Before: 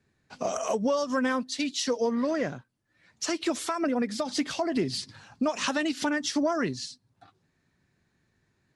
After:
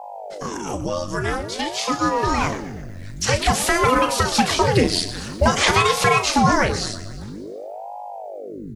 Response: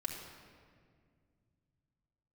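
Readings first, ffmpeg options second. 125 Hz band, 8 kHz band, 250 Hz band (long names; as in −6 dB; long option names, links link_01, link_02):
+19.0 dB, +10.5 dB, +4.0 dB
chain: -filter_complex "[0:a]equalizer=frequency=1500:width=1.5:gain=2,acrossover=split=3500[link_01][link_02];[link_02]acompressor=threshold=-48dB:ratio=4:attack=1:release=60[link_03];[link_01][link_03]amix=inputs=2:normalize=0,highshelf=frequency=9000:gain=8.5,dynaudnorm=framelen=250:gausssize=17:maxgain=13dB,crystalizer=i=3:c=0,aeval=exprs='val(0)+0.0251*(sin(2*PI*50*n/s)+sin(2*PI*2*50*n/s)/2+sin(2*PI*3*50*n/s)/3+sin(2*PI*4*50*n/s)/4+sin(2*PI*5*50*n/s)/5)':channel_layout=same,asplit=2[link_04][link_05];[link_05]adelay=35,volume=-9.5dB[link_06];[link_04][link_06]amix=inputs=2:normalize=0,aecho=1:1:121|242|363|484|605|726:0.188|0.111|0.0656|0.0387|0.0228|0.0135,asplit=2[link_07][link_08];[1:a]atrim=start_sample=2205[link_09];[link_08][link_09]afir=irnorm=-1:irlink=0,volume=-21.5dB[link_10];[link_07][link_10]amix=inputs=2:normalize=0,aeval=exprs='val(0)*sin(2*PI*410*n/s+410*0.9/0.5*sin(2*PI*0.5*n/s))':channel_layout=same"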